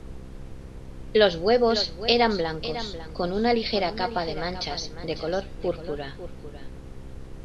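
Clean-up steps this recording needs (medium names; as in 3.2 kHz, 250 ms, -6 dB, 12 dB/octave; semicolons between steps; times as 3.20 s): de-hum 65.6 Hz, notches 8; noise print and reduce 29 dB; inverse comb 549 ms -12.5 dB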